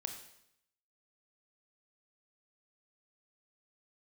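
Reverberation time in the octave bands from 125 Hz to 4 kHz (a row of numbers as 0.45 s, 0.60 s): 0.85 s, 0.80 s, 0.75 s, 0.75 s, 0.75 s, 0.75 s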